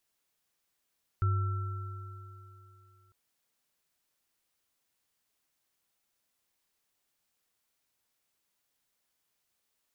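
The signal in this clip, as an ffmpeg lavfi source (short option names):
-f lavfi -i "aevalsrc='0.0668*pow(10,-3*t/2.81)*sin(2*PI*98.2*t)+0.00668*pow(10,-3*t/3.52)*sin(2*PI*363*t)+0.0188*pow(10,-3*t/3.44)*sin(2*PI*1340*t)':d=1.9:s=44100"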